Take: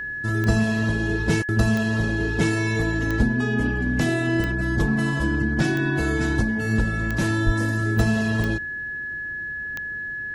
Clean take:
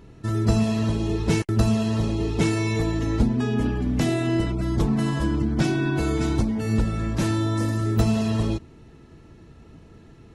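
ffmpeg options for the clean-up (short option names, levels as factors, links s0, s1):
-filter_complex "[0:a]adeclick=t=4,bandreject=f=1700:w=30,asplit=3[s0][s1][s2];[s0]afade=t=out:st=7.45:d=0.02[s3];[s1]highpass=f=140:w=0.5412,highpass=f=140:w=1.3066,afade=t=in:st=7.45:d=0.02,afade=t=out:st=7.57:d=0.02[s4];[s2]afade=t=in:st=7.57:d=0.02[s5];[s3][s4][s5]amix=inputs=3:normalize=0"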